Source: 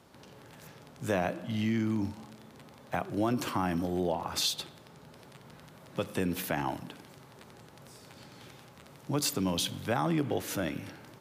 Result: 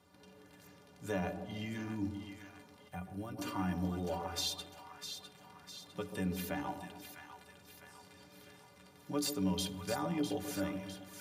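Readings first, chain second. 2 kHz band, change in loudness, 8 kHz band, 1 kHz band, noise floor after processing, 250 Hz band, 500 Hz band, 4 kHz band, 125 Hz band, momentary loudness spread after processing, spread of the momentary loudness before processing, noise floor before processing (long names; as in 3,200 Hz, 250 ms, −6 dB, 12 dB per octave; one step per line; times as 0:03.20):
−7.0 dB, −7.0 dB, −6.5 dB, −7.5 dB, −60 dBFS, −5.5 dB, −7.0 dB, −6.0 dB, −5.5 dB, 21 LU, 21 LU, −54 dBFS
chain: stiff-string resonator 87 Hz, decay 0.21 s, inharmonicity 0.03
echo with a time of its own for lows and highs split 900 Hz, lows 137 ms, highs 654 ms, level −8 dB
gain on a spectral selection 0:02.88–0:03.38, 230–8,000 Hz −8 dB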